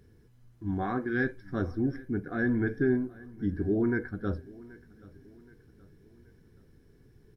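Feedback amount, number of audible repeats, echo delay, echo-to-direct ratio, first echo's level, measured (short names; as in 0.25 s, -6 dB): 44%, 2, 0.776 s, -20.5 dB, -21.5 dB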